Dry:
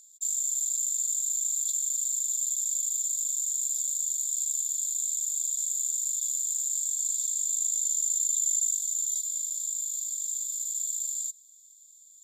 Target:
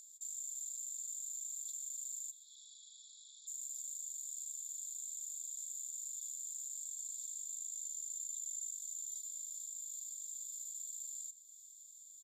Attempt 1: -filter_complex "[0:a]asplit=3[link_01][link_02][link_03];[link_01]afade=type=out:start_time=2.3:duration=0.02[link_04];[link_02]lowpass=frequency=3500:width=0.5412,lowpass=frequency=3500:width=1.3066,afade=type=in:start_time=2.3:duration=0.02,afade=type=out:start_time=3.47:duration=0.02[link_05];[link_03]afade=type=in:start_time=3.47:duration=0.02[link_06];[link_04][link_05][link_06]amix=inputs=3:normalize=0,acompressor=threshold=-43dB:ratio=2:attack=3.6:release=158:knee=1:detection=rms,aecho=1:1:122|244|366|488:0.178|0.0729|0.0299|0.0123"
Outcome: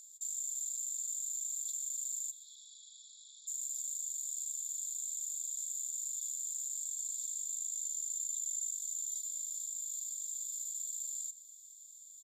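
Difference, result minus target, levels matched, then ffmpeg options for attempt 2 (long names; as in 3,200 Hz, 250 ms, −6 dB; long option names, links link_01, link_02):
downward compressor: peak gain reduction −5 dB
-filter_complex "[0:a]asplit=3[link_01][link_02][link_03];[link_01]afade=type=out:start_time=2.3:duration=0.02[link_04];[link_02]lowpass=frequency=3500:width=0.5412,lowpass=frequency=3500:width=1.3066,afade=type=in:start_time=2.3:duration=0.02,afade=type=out:start_time=3.47:duration=0.02[link_05];[link_03]afade=type=in:start_time=3.47:duration=0.02[link_06];[link_04][link_05][link_06]amix=inputs=3:normalize=0,acompressor=threshold=-53.5dB:ratio=2:attack=3.6:release=158:knee=1:detection=rms,aecho=1:1:122|244|366|488:0.178|0.0729|0.0299|0.0123"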